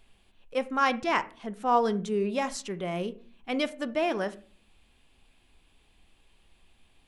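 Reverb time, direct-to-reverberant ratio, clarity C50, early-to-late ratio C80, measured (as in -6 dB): 0.45 s, 12.0 dB, 18.5 dB, 23.5 dB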